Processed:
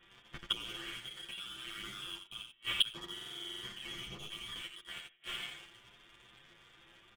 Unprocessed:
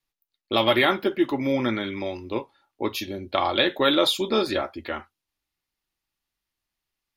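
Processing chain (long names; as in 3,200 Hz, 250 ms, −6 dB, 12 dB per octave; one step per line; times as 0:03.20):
compressor on every frequency bin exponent 0.6
output level in coarse steps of 14 dB
voice inversion scrambler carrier 3,600 Hz
on a send: repeating echo 86 ms, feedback 23%, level −4 dB
on the sum: coupled-rooms reverb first 0.21 s, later 1.6 s, from −18 dB, DRR 8 dB
gate with flip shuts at −32 dBFS, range −33 dB
leveller curve on the samples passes 2
comb filter 5.8 ms, depth 43%
buffer that repeats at 0:03.12, samples 2,048, times 10
barber-pole flanger 9 ms +2.3 Hz
level +12.5 dB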